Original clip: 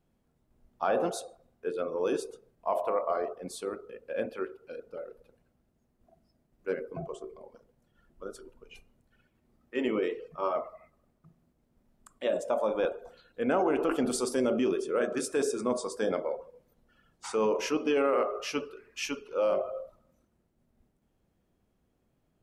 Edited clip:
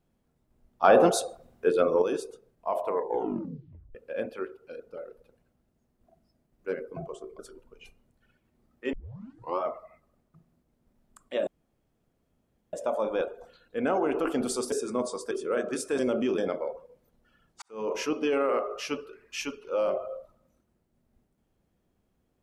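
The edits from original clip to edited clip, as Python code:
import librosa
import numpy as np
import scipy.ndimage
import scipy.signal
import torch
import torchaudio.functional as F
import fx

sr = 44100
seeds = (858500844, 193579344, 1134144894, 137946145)

y = fx.edit(x, sr, fx.clip_gain(start_s=0.84, length_s=1.18, db=9.5),
    fx.tape_stop(start_s=2.84, length_s=1.11),
    fx.cut(start_s=7.39, length_s=0.9),
    fx.tape_start(start_s=9.83, length_s=0.66),
    fx.insert_room_tone(at_s=12.37, length_s=1.26),
    fx.swap(start_s=14.36, length_s=0.39, other_s=15.43, other_length_s=0.59),
    fx.fade_in_span(start_s=17.26, length_s=0.3, curve='qua'), tone=tone)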